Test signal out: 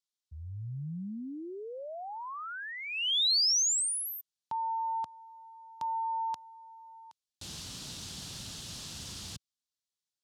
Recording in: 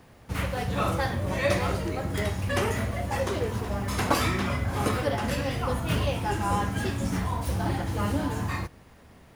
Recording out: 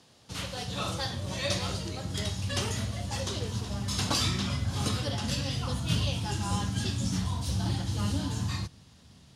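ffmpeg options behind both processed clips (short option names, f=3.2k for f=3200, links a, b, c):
-af "highpass=110,lowpass=5.3k,aexciter=amount=4.7:drive=7.6:freq=3.1k,asubboost=boost=4.5:cutoff=190,volume=-7.5dB"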